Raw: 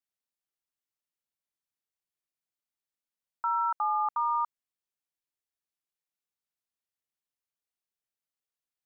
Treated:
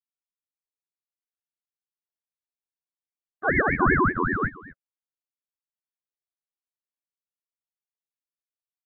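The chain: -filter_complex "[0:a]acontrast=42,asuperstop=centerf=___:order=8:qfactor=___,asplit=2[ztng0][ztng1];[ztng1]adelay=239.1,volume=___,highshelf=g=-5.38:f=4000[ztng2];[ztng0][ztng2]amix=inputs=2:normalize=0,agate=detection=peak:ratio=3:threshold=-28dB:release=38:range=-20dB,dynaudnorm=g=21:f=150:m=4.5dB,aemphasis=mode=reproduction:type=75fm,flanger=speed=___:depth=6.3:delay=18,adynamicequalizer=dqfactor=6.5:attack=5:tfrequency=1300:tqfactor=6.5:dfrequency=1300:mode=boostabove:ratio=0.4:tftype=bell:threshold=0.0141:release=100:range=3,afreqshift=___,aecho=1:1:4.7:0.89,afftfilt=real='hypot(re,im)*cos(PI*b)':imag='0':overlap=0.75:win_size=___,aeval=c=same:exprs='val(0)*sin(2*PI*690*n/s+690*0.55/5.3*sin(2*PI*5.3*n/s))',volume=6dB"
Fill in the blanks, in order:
1200, 7.7, -7dB, 2.9, -180, 2048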